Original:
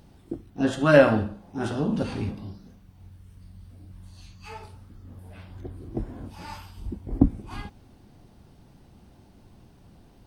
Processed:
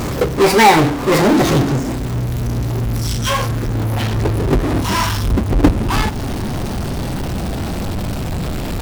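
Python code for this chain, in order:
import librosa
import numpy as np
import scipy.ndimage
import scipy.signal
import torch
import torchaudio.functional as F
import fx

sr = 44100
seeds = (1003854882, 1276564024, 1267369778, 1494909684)

y = fx.speed_glide(x, sr, from_pct=148, to_pct=85)
y = fx.power_curve(y, sr, exponent=0.35)
y = fx.transient(y, sr, attack_db=2, sustain_db=-5)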